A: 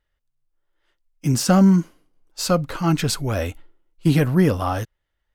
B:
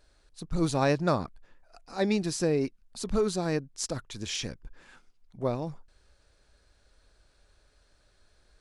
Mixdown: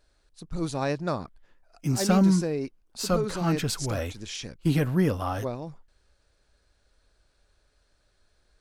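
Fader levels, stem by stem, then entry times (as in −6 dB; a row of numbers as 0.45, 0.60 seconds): −6.5, −3.0 decibels; 0.60, 0.00 seconds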